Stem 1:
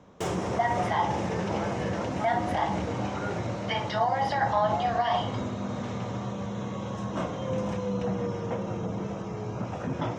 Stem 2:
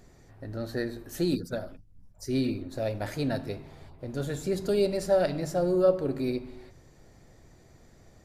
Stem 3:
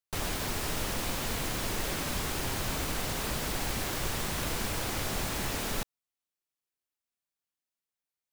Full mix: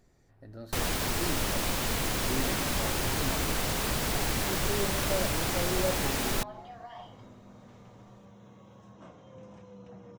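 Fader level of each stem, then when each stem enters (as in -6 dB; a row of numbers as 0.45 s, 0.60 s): -19.5 dB, -9.5 dB, +3.0 dB; 1.85 s, 0.00 s, 0.60 s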